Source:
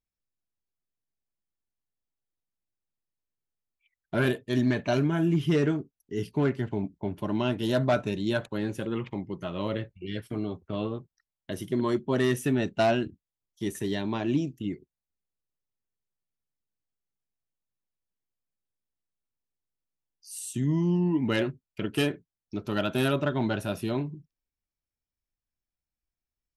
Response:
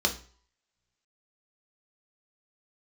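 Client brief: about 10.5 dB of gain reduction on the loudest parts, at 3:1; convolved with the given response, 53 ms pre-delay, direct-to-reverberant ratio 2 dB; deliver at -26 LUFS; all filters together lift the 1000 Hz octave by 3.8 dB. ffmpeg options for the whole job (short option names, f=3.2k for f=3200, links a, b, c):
-filter_complex "[0:a]equalizer=f=1k:t=o:g=5.5,acompressor=threshold=-32dB:ratio=3,asplit=2[a][b];[1:a]atrim=start_sample=2205,adelay=53[c];[b][c]afir=irnorm=-1:irlink=0,volume=-12dB[d];[a][d]amix=inputs=2:normalize=0,volume=6.5dB"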